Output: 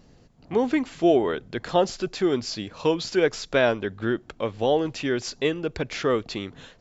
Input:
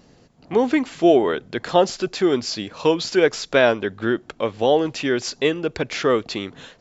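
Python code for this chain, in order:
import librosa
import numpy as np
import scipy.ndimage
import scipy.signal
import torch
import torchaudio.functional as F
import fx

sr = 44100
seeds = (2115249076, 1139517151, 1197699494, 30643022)

y = fx.low_shelf(x, sr, hz=94.0, db=12.0)
y = y * 10.0 ** (-5.0 / 20.0)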